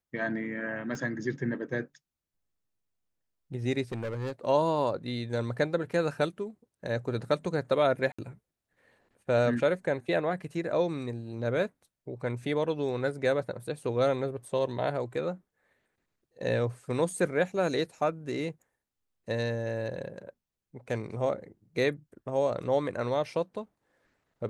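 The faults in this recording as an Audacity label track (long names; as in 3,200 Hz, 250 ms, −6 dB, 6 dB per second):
0.950000	0.950000	drop-out 2.2 ms
3.920000	4.320000	clipping −30 dBFS
8.120000	8.190000	drop-out 65 ms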